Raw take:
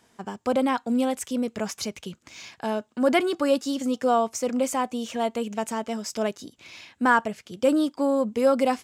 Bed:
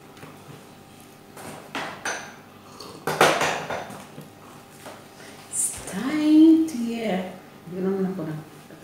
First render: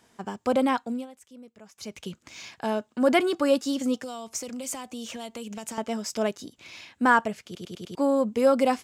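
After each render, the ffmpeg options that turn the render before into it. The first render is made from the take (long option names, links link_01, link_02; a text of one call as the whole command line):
ffmpeg -i in.wav -filter_complex "[0:a]asettb=1/sr,asplit=3[link_01][link_02][link_03];[link_01]atrim=end=4.014[link_04];[link_02]atrim=start=4.01:end=5.78,asetpts=PTS-STARTPTS,afade=type=in:duration=0.004:curve=qsin,afade=type=out:start_time=1.766:duration=0.004:curve=qsin,acrossover=split=130|3000[link_05][link_06][link_07];[link_06]acompressor=threshold=-35dB:ratio=6:attack=3.2:release=140:knee=2.83:detection=peak[link_08];[link_05][link_08][link_07]amix=inputs=3:normalize=0[link_09];[link_03]atrim=start=5.776[link_10];[link_04][link_09]acrossfade=duration=0.004:curve1=hsin:curve2=qsin[link_11];[link_11][link_10]acrossfade=duration=0.004:curve1=qsin:curve2=hsin,asplit=8[link_12][link_13][link_14][link_15][link_16][link_17][link_18][link_19];[link_12]atrim=end=1.07,asetpts=PTS-STARTPTS,afade=type=out:start_time=0.74:duration=0.33:silence=0.0944061[link_20];[link_13]atrim=start=1.07:end=1.74,asetpts=PTS-STARTPTS,volume=-20.5dB[link_21];[link_14]atrim=start=1.74:end=7.552,asetpts=PTS-STARTPTS,afade=type=in:duration=0.33:silence=0.0944061[link_22];[link_15]atrim=start=7.448:end=7.552[link_23];[link_16]atrim=start=7.448:end=7.552[link_24];[link_17]atrim=start=7.448:end=7.552[link_25];[link_18]atrim=start=7.448:end=7.552[link_26];[link_19]atrim=start=7.948[link_27];[link_20][link_21][link_22]concat=n=3:v=0:a=1[link_28];[link_28][link_23]acrossfade=duration=0.004:curve1=hsin:curve2=hsin[link_29];[link_29][link_24]acrossfade=duration=0.004:curve1=hsin:curve2=hsin[link_30];[link_30][link_25]acrossfade=duration=0.004:curve1=hsin:curve2=hsin[link_31];[link_31][link_26]acrossfade=duration=0.004:curve1=hsin:curve2=hsin[link_32];[link_32][link_27]acrossfade=duration=0.004:curve1=hsin:curve2=hsin" out.wav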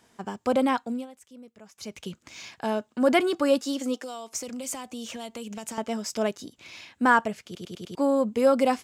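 ffmpeg -i in.wav -filter_complex "[0:a]asettb=1/sr,asplit=3[link_01][link_02][link_03];[link_01]atrim=end=3.624[link_04];[link_02]atrim=start=3.62:end=4.33,asetpts=PTS-STARTPTS,afade=type=in:duration=0.004:curve=qsin,afade=type=out:start_time=0.706:duration=0.004:curve=qsin,highpass=frequency=260:width=0.5412,highpass=frequency=260:width=1.3066[link_05];[link_03]atrim=start=4.326[link_06];[link_04][link_05]acrossfade=duration=0.004:curve1=hsin:curve2=qsin[link_07];[link_07][link_06]acrossfade=duration=0.004:curve1=qsin:curve2=hsin,asettb=1/sr,asplit=3[link_08][link_09][link_10];[link_08]atrim=end=8.104[link_11];[link_09]atrim=start=8.1:end=8.53,asetpts=PTS-STARTPTS,afade=type=in:duration=0.004:curve=qsin,afade=type=out:start_time=0.426:duration=0.004:curve=qsin,bandreject=frequency=5700:width=12[link_12];[link_10]atrim=start=8.526[link_13];[link_11][link_12]acrossfade=duration=0.004:curve1=hsin:curve2=qsin[link_14];[link_14][link_13]acrossfade=duration=0.004:curve1=qsin:curve2=hsin" out.wav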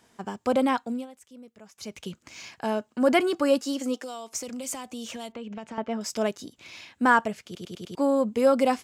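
ffmpeg -i in.wav -filter_complex "[0:a]asettb=1/sr,asplit=3[link_01][link_02][link_03];[link_01]atrim=end=2.224[link_04];[link_02]atrim=start=2.22:end=3.95,asetpts=PTS-STARTPTS,afade=type=in:duration=0.004:curve=qsin,afade=type=out:start_time=1.726:duration=0.004:curve=qsin,bandreject=frequency=3600:width=11[link_05];[link_03]atrim=start=3.946[link_06];[link_04][link_05]acrossfade=duration=0.004:curve1=hsin:curve2=qsin[link_07];[link_07][link_06]acrossfade=duration=0.004:curve1=qsin:curve2=hsin,asettb=1/sr,asplit=3[link_08][link_09][link_10];[link_08]atrim=end=5.324[link_11];[link_09]atrim=start=5.32:end=6.01,asetpts=PTS-STARTPTS,afade=type=in:duration=0.004:curve=qsin,afade=type=out:start_time=0.686:duration=0.004:curve=qsin,lowpass=2500[link_12];[link_10]atrim=start=6.006[link_13];[link_11][link_12]acrossfade=duration=0.004:curve1=hsin:curve2=qsin[link_14];[link_14][link_13]acrossfade=duration=0.004:curve1=qsin:curve2=hsin" out.wav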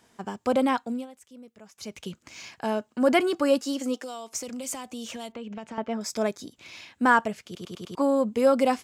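ffmpeg -i in.wav -filter_complex "[0:a]asettb=1/sr,asplit=3[link_01][link_02][link_03];[link_01]atrim=end=5.944[link_04];[link_02]atrim=start=5.94:end=6.41,asetpts=PTS-STARTPTS,afade=type=in:duration=0.004:curve=qsin,afade=type=out:start_time=0.466:duration=0.004:curve=qsin,asuperstop=centerf=2900:order=4:qfactor=6.7[link_05];[link_03]atrim=start=6.406[link_06];[link_04][link_05]acrossfade=duration=0.004:curve1=hsin:curve2=qsin[link_07];[link_07][link_06]acrossfade=duration=0.004:curve1=qsin:curve2=hsin,asettb=1/sr,asplit=3[link_08][link_09][link_10];[link_08]atrim=end=7.594[link_11];[link_09]atrim=start=7.59:end=8.02,asetpts=PTS-STARTPTS,afade=type=in:duration=0.004:curve=qsin,afade=type=out:start_time=0.426:duration=0.004:curve=qsin,equalizer=frequency=1100:width_type=o:width=0.56:gain=10[link_12];[link_10]atrim=start=8.016[link_13];[link_11][link_12]acrossfade=duration=0.004:curve1=hsin:curve2=qsin[link_14];[link_14][link_13]acrossfade=duration=0.004:curve1=qsin:curve2=hsin" out.wav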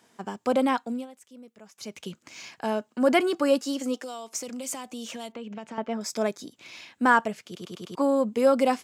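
ffmpeg -i in.wav -af "highpass=140" out.wav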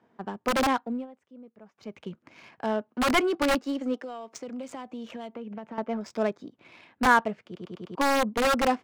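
ffmpeg -i in.wav -filter_complex "[0:a]acrossover=split=600[link_01][link_02];[link_01]aeval=exprs='(mod(9.44*val(0)+1,2)-1)/9.44':channel_layout=same[link_03];[link_03][link_02]amix=inputs=2:normalize=0,adynamicsmooth=sensitivity=3.5:basefreq=1500" out.wav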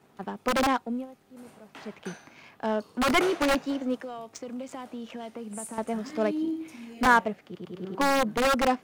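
ffmpeg -i in.wav -i bed.wav -filter_complex "[1:a]volume=-16dB[link_01];[0:a][link_01]amix=inputs=2:normalize=0" out.wav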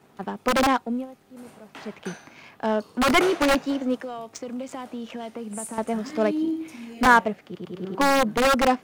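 ffmpeg -i in.wav -af "volume=4dB" out.wav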